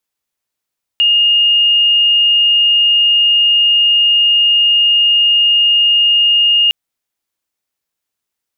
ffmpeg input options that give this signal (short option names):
-f lavfi -i "aevalsrc='0.422*sin(2*PI*2840*t)':d=5.71:s=44100"